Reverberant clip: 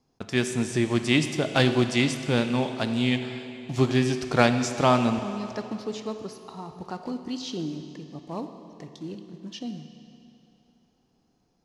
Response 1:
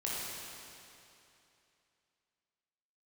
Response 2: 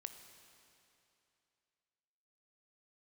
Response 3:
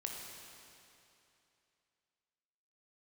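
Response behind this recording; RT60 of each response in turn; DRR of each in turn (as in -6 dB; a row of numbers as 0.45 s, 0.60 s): 2; 2.8 s, 2.8 s, 2.8 s; -6.5 dB, 7.5 dB, 0.0 dB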